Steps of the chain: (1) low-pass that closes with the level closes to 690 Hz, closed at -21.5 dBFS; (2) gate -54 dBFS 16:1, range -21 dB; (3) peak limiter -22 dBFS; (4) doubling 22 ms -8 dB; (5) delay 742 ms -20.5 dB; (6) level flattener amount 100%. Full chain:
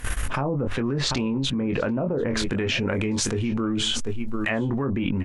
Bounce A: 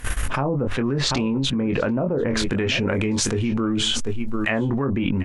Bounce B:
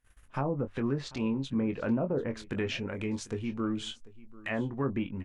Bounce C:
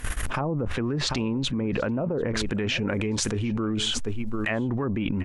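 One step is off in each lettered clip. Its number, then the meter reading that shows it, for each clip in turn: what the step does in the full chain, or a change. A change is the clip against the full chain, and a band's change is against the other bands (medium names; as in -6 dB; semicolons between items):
3, loudness change +2.5 LU; 6, crest factor change -2.5 dB; 4, loudness change -2.0 LU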